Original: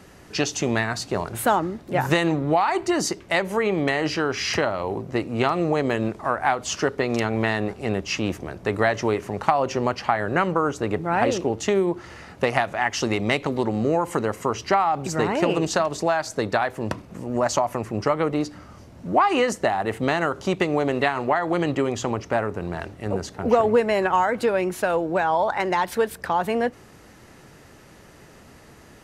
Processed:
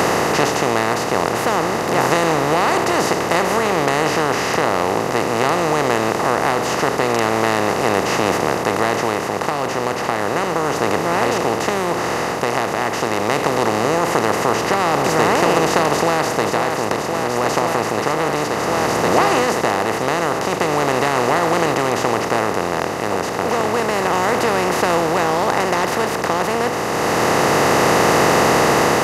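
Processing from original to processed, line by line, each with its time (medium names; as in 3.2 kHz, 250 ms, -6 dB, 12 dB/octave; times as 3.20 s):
15.87–16.43 s: echo throw 530 ms, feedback 75%, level -6.5 dB
whole clip: spectral levelling over time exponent 0.2; level rider; trim -1.5 dB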